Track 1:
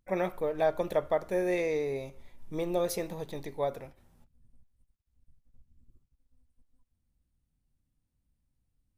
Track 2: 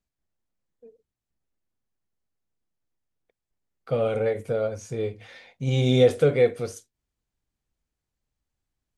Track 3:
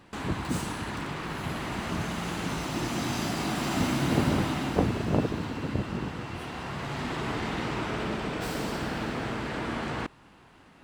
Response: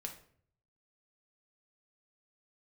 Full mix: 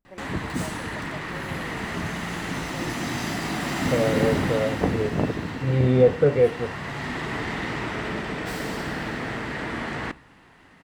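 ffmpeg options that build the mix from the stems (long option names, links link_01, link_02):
-filter_complex "[0:a]volume=-14dB[link_01];[1:a]lowpass=1500,volume=1dB[link_02];[2:a]equalizer=frequency=1900:width_type=o:width=0.28:gain=9,adelay=50,volume=-0.5dB,asplit=2[link_03][link_04];[link_04]volume=-9.5dB[link_05];[3:a]atrim=start_sample=2205[link_06];[link_05][link_06]afir=irnorm=-1:irlink=0[link_07];[link_01][link_02][link_03][link_07]amix=inputs=4:normalize=0"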